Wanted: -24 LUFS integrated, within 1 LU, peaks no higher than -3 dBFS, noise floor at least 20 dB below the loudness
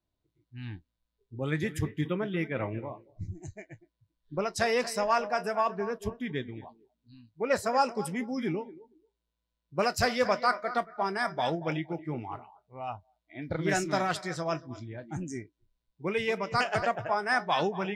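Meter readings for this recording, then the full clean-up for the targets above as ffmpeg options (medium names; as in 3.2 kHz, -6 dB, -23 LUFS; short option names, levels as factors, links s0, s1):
loudness -30.5 LUFS; peak level -13.0 dBFS; loudness target -24.0 LUFS
-> -af "volume=2.11"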